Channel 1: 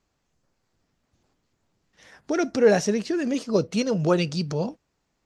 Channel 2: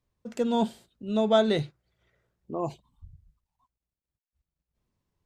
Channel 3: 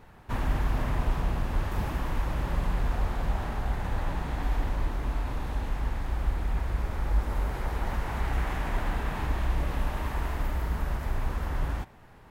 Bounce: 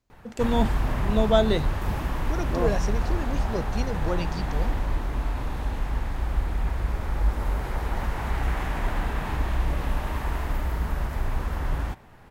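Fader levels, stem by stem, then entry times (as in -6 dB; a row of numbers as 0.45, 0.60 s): -9.0, +1.0, +2.5 dB; 0.00, 0.00, 0.10 s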